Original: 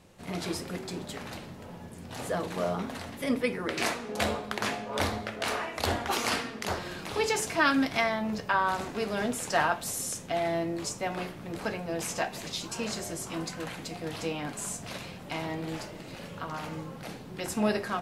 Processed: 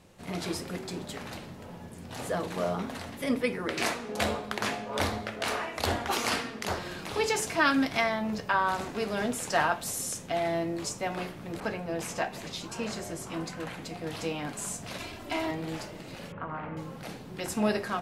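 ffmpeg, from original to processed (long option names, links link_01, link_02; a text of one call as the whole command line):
ffmpeg -i in.wav -filter_complex "[0:a]asettb=1/sr,asplit=3[link_01][link_02][link_03];[link_01]atrim=end=11.604[link_04];[link_02]atrim=start=11.6:end=14.08,asetpts=PTS-STARTPTS,afade=type=in:duration=0.004:curve=qsin,afade=type=out:start_time=2.476:duration=0.004:curve=qsin,adynamicequalizer=threshold=0.00398:dfrequency=3100:dqfactor=0.7:tfrequency=3100:tqfactor=0.7:attack=5:release=100:ratio=0.375:range=2.5:mode=cutabove:tftype=highshelf[link_05];[link_03]atrim=start=14.076[link_06];[link_04][link_05]acrossfade=duration=0.004:curve1=hsin:curve2=qsin[link_07];[link_07][link_06]acrossfade=duration=0.004:curve1=qsin:curve2=hsin,asettb=1/sr,asplit=3[link_08][link_09][link_10];[link_08]atrim=end=14.994[link_11];[link_09]atrim=start=14.99:end=15.51,asetpts=PTS-STARTPTS,afade=type=in:duration=0.004:curve=qsin,afade=type=out:start_time=0.516:duration=0.004:curve=qsin,aecho=1:1:3:1,atrim=end_sample=22932[link_12];[link_10]atrim=start=15.506[link_13];[link_11][link_12]acrossfade=duration=0.004:curve1=hsin:curve2=qsin[link_14];[link_14][link_13]acrossfade=duration=0.004:curve1=qsin:curve2=hsin,asettb=1/sr,asplit=3[link_15][link_16][link_17];[link_15]atrim=end=16.324[link_18];[link_16]atrim=start=16.32:end=16.77,asetpts=PTS-STARTPTS,afade=type=in:duration=0.004:curve=qsin,afade=type=out:start_time=0.446:duration=0.004:curve=qsin,lowpass=frequency=2200:width=0.5412,lowpass=frequency=2200:width=1.3066[link_19];[link_17]atrim=start=16.766[link_20];[link_18][link_19]acrossfade=duration=0.004:curve1=hsin:curve2=qsin[link_21];[link_21][link_20]acrossfade=duration=0.004:curve1=qsin:curve2=hsin" out.wav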